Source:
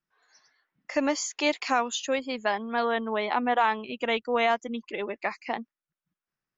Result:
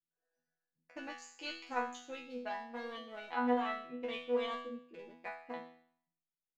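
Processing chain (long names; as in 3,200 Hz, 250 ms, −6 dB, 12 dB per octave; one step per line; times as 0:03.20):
adaptive Wiener filter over 41 samples
resonators tuned to a chord E3 fifth, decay 0.6 s
level +7 dB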